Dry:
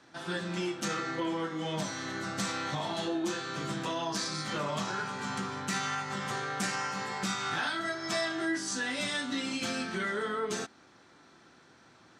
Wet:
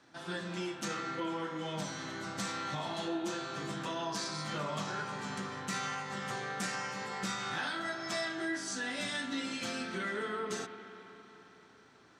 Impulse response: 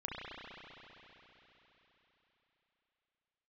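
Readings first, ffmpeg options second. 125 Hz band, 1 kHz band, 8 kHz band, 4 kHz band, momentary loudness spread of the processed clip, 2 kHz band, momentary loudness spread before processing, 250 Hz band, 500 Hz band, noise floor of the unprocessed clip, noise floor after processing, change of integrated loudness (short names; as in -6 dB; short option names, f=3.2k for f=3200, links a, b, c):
-3.5 dB, -3.5 dB, -4.0 dB, -4.0 dB, 5 LU, -3.5 dB, 4 LU, -4.0 dB, -3.5 dB, -59 dBFS, -60 dBFS, -4.0 dB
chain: -filter_complex "[0:a]asplit=2[a][b];[1:a]atrim=start_sample=2205[c];[b][c]afir=irnorm=-1:irlink=0,volume=-8dB[d];[a][d]amix=inputs=2:normalize=0,volume=-6dB"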